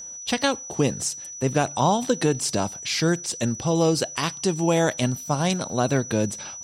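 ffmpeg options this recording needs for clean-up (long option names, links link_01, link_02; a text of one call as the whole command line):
ffmpeg -i in.wav -af "bandreject=frequency=5900:width=30" out.wav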